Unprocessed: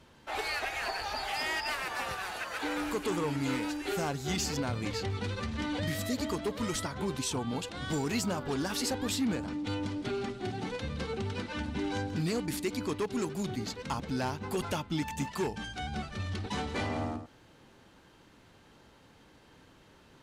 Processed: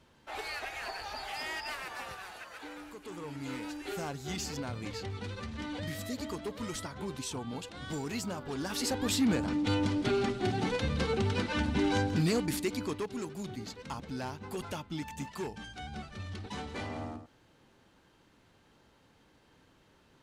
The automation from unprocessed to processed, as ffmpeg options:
-af "volume=15dB,afade=t=out:st=1.75:d=1.22:silence=0.316228,afade=t=in:st=2.97:d=0.82:silence=0.316228,afade=t=in:st=8.52:d=1.05:silence=0.316228,afade=t=out:st=11.95:d=1.22:silence=0.298538"

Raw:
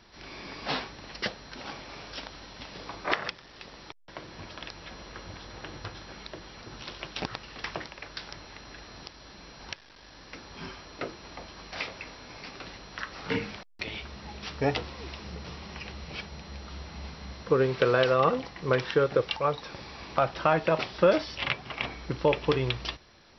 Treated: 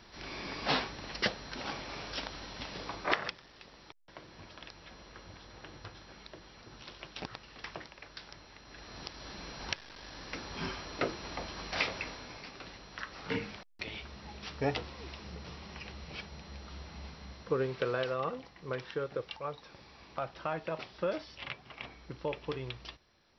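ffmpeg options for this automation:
-af "volume=12dB,afade=t=out:st=2.67:d=0.96:silence=0.354813,afade=t=in:st=8.65:d=0.63:silence=0.281838,afade=t=out:st=11.97:d=0.5:silence=0.398107,afade=t=out:st=16.91:d=1.39:silence=0.446684"

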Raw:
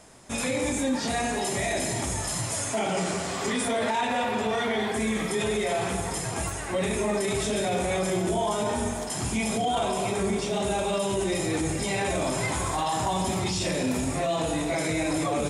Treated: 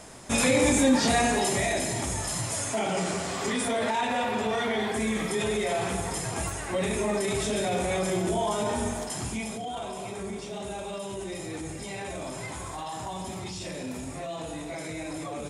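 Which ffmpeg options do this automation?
-af "volume=5.5dB,afade=t=out:st=0.99:d=0.87:silence=0.473151,afade=t=out:st=8.99:d=0.59:silence=0.398107"

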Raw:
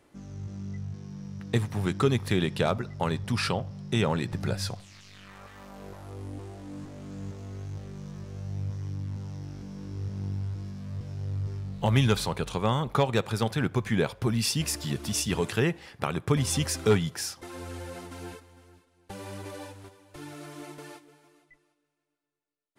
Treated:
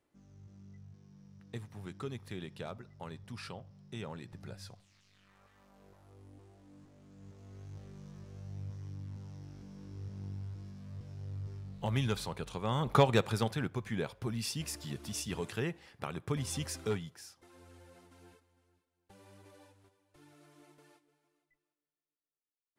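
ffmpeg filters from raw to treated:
-af "afade=t=in:st=7.16:d=0.64:silence=0.421697,afade=t=in:st=12.66:d=0.31:silence=0.334965,afade=t=out:st=12.97:d=0.75:silence=0.316228,afade=t=out:st=16.76:d=0.42:silence=0.398107"

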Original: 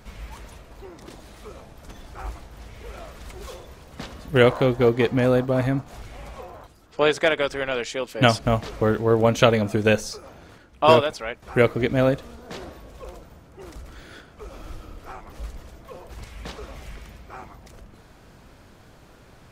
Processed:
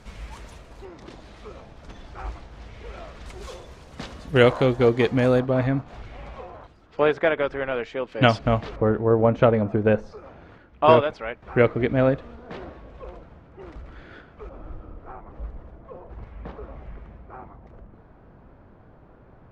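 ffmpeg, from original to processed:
-af "asetnsamples=n=441:p=0,asendcmd='0.85 lowpass f 4800;3.26 lowpass f 8300;5.4 lowpass f 3400;7.01 lowpass f 1900;8.12 lowpass f 3400;8.76 lowpass f 1300;10.17 lowpass f 2400;14.49 lowpass f 1200',lowpass=9.1k"

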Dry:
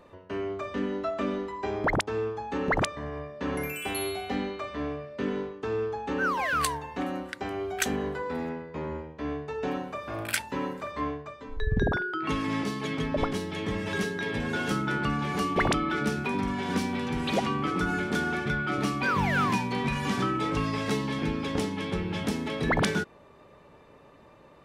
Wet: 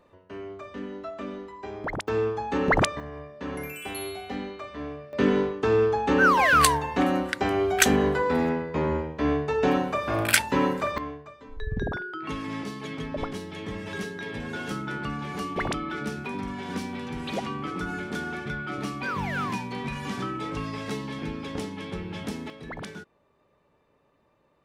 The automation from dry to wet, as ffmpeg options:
-af "asetnsamples=n=441:p=0,asendcmd='2.08 volume volume 4.5dB;3 volume volume -3dB;5.13 volume volume 8.5dB;10.98 volume volume -4dB;22.5 volume volume -13dB',volume=-6dB"

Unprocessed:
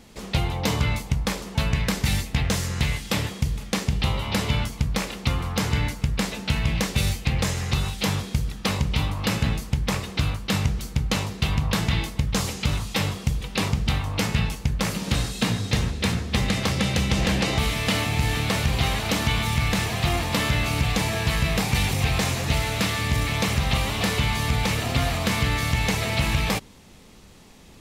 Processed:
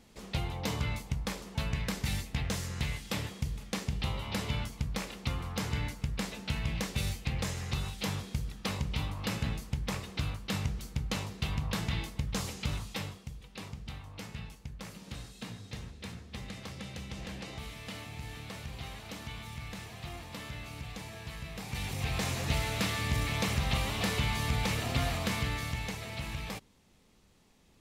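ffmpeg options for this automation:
-af "volume=2dB,afade=t=out:st=12.78:d=0.46:silence=0.334965,afade=t=in:st=21.55:d=0.89:silence=0.251189,afade=t=out:st=25.11:d=0.87:silence=0.398107"

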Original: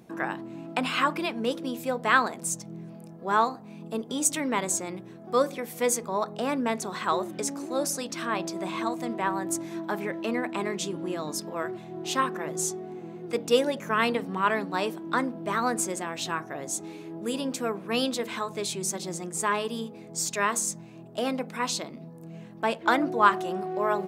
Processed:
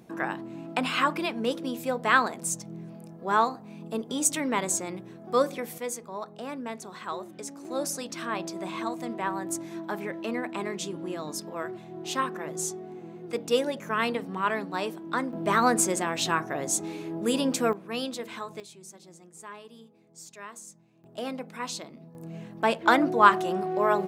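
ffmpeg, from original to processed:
-af "asetnsamples=n=441:p=0,asendcmd='5.78 volume volume -8.5dB;7.65 volume volume -2.5dB;15.33 volume volume 4.5dB;17.73 volume volume -5.5dB;18.6 volume volume -17dB;21.04 volume volume -5.5dB;22.15 volume volume 2.5dB',volume=0dB"

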